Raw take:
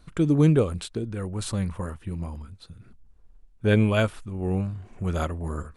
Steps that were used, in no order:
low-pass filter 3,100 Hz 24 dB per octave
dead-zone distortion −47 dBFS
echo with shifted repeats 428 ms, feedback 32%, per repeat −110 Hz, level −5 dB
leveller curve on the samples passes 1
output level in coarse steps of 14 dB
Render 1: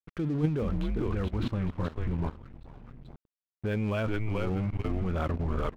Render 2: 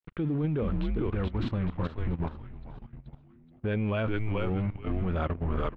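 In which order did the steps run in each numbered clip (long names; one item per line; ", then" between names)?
low-pass filter, then leveller curve on the samples, then echo with shifted repeats, then output level in coarse steps, then dead-zone distortion
dead-zone distortion, then leveller curve on the samples, then echo with shifted repeats, then output level in coarse steps, then low-pass filter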